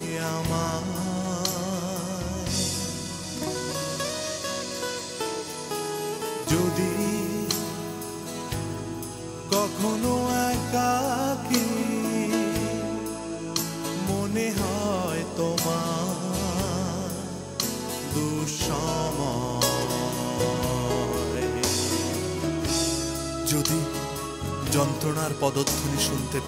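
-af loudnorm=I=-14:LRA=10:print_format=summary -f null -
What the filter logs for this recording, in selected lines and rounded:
Input Integrated:    -27.0 LUFS
Input True Peak:      -8.5 dBTP
Input LRA:             3.1 LU
Input Threshold:     -37.0 LUFS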